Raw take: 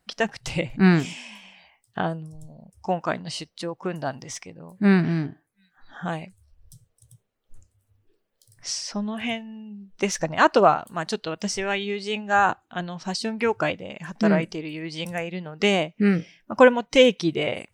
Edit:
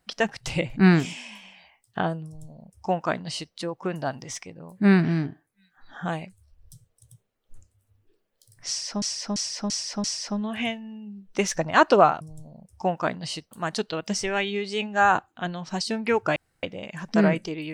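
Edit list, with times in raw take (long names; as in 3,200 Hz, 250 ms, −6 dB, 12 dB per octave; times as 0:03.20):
0:02.25–0:03.55: duplicate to 0:10.85
0:08.68–0:09.02: repeat, 5 plays
0:13.70: splice in room tone 0.27 s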